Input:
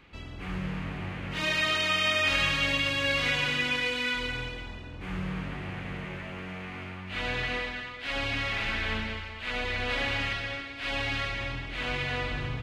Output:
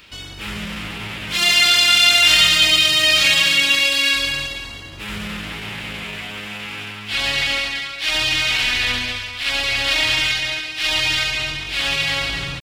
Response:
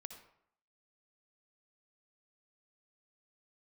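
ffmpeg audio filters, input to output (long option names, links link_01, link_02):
-filter_complex "[0:a]asplit=2[link_01][link_02];[1:a]atrim=start_sample=2205,lowpass=4700[link_03];[link_02][link_03]afir=irnorm=-1:irlink=0,volume=-8.5dB[link_04];[link_01][link_04]amix=inputs=2:normalize=0,asetrate=49501,aresample=44100,atempo=0.890899,crystalizer=i=8.5:c=0,volume=1dB"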